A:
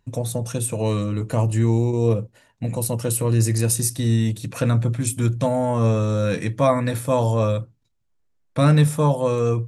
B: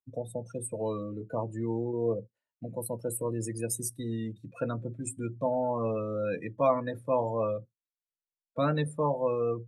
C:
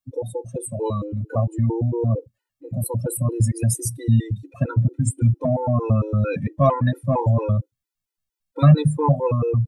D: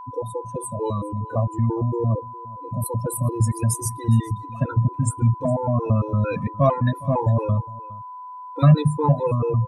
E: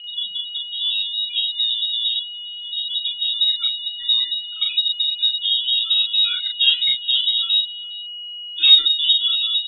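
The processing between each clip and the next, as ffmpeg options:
-filter_complex "[0:a]afftdn=nr=28:nf=-27,bass=f=250:g=-10,treble=f=4000:g=-4,acrossover=split=110|5900[s0][s1][s2];[s0]acompressor=threshold=0.00562:ratio=6[s3];[s3][s1][s2]amix=inputs=3:normalize=0,volume=0.501"
-af "acontrast=78,asubboost=boost=7:cutoff=150,afftfilt=real='re*gt(sin(2*PI*4.4*pts/sr)*(1-2*mod(floor(b*sr/1024/260),2)),0)':imag='im*gt(sin(2*PI*4.4*pts/sr)*(1-2*mod(floor(b*sr/1024/260),2)),0)':win_size=1024:overlap=0.75,volume=1.58"
-af "aeval=exprs='val(0)+0.02*sin(2*PI*1000*n/s)':c=same,aecho=1:1:411:0.0891,volume=0.891"
-filter_complex "[0:a]asplit=2[s0][s1];[s1]adelay=39,volume=0.668[s2];[s0][s2]amix=inputs=2:normalize=0,lowpass=f=3300:t=q:w=0.5098,lowpass=f=3300:t=q:w=0.6013,lowpass=f=3300:t=q:w=0.9,lowpass=f=3300:t=q:w=2.563,afreqshift=-3900"

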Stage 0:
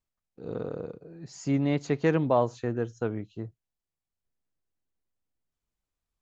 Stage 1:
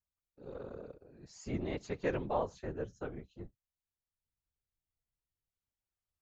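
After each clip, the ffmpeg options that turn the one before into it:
-af "afftfilt=real='hypot(re,im)*cos(2*PI*random(0))':imag='hypot(re,im)*sin(2*PI*random(1))':win_size=512:overlap=0.75,equalizer=f=210:w=0.77:g=-4.5,volume=0.75"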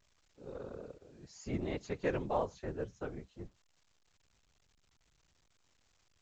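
-ar 16000 -c:a pcm_alaw

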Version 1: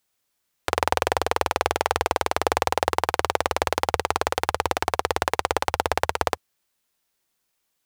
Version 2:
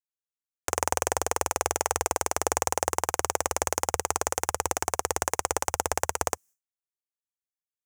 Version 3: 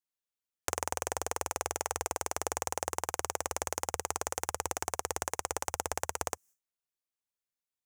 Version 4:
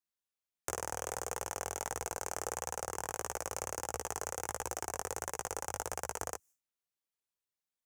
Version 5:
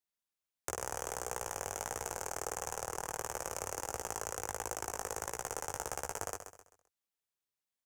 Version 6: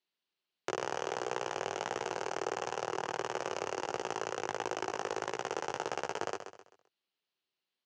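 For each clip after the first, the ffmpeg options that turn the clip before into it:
-af "agate=range=0.0224:threshold=0.00631:ratio=3:detection=peak,highshelf=f=5200:t=q:w=3:g=8.5,volume=0.562"
-af "acompressor=threshold=0.0398:ratio=6"
-filter_complex "[0:a]acrossover=split=310|5200[s0][s1][s2];[s1]aeval=exprs='clip(val(0),-1,0.0266)':c=same[s3];[s0][s3][s2]amix=inputs=3:normalize=0,flanger=delay=16:depth=4.9:speed=1.5,volume=1.12"
-af "aecho=1:1:130|260|390|520:0.355|0.128|0.046|0.0166,volume=0.891"
-af "highpass=f=130:w=0.5412,highpass=f=130:w=1.3066,equalizer=f=370:t=q:w=4:g=7,equalizer=f=2900:t=q:w=4:g=7,equalizer=f=4200:t=q:w=4:g=6,lowpass=f=4900:w=0.5412,lowpass=f=4900:w=1.3066,volume=1.58"

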